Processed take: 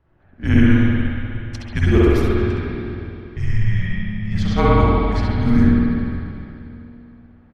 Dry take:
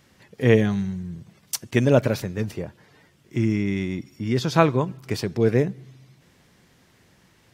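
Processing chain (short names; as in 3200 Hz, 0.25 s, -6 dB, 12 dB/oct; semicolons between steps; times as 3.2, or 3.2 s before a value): 3.75–4.51 half-wave gain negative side -3 dB; low-pass opened by the level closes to 1100 Hz, open at -18 dBFS; feedback echo 67 ms, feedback 31%, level -7 dB; spring tank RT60 2.8 s, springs 49/58 ms, chirp 25 ms, DRR -7 dB; frequency shift -210 Hz; gain -3.5 dB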